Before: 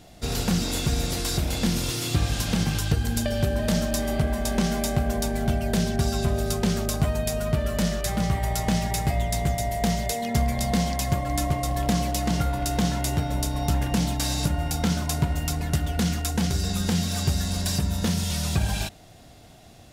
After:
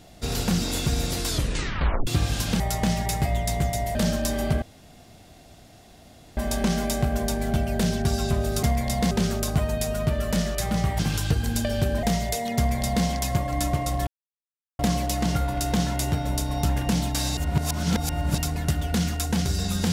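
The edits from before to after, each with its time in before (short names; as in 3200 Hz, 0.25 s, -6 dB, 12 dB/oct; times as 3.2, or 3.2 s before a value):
1.28 tape stop 0.79 s
2.6–3.64 swap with 8.45–9.8
4.31 insert room tone 1.75 s
10.34–10.82 copy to 6.57
11.84 insert silence 0.72 s
14.42–15.43 reverse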